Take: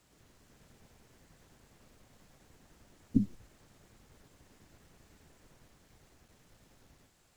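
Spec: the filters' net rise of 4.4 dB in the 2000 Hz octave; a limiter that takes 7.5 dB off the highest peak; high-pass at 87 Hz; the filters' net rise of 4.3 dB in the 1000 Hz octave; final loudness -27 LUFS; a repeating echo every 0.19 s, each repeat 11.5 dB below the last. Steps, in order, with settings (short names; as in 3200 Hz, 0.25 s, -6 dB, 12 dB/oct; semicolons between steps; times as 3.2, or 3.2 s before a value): HPF 87 Hz; bell 1000 Hz +4.5 dB; bell 2000 Hz +4 dB; limiter -20 dBFS; feedback echo 0.19 s, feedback 27%, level -11.5 dB; gain +12.5 dB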